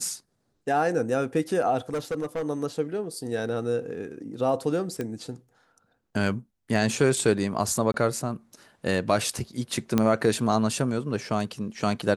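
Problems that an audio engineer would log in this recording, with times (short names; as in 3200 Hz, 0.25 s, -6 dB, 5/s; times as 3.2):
1.9–2.42 clipped -24.5 dBFS
5.01 pop -18 dBFS
7.92–7.94 gap 22 ms
9.98 pop -9 dBFS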